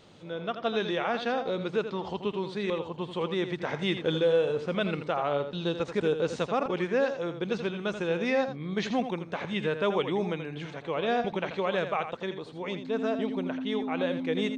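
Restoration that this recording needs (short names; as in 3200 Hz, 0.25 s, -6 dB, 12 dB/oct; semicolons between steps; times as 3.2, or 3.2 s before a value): notch 260 Hz, Q 30; inverse comb 83 ms -9.5 dB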